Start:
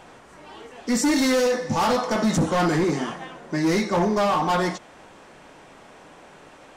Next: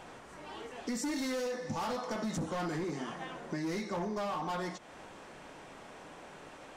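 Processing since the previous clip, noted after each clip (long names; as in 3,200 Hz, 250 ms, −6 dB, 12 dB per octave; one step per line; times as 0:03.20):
downward compressor 4 to 1, threshold −33 dBFS, peak gain reduction 12 dB
level −3 dB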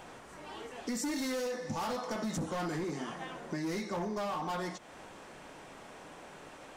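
high-shelf EQ 11,000 Hz +7.5 dB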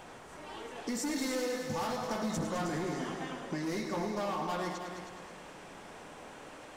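echo machine with several playback heads 105 ms, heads all three, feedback 44%, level −11 dB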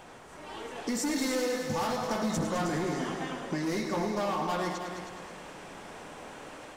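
automatic gain control gain up to 4 dB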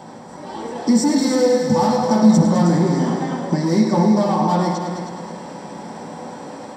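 convolution reverb RT60 0.45 s, pre-delay 3 ms, DRR 2.5 dB
level +1.5 dB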